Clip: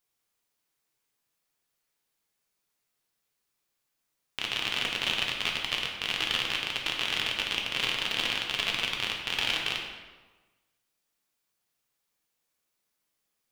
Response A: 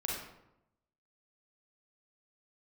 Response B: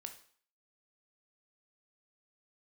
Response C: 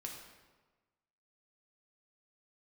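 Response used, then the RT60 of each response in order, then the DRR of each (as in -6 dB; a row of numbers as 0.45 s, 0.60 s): C; 0.85 s, 0.50 s, 1.3 s; -3.5 dB, 5.5 dB, -0.5 dB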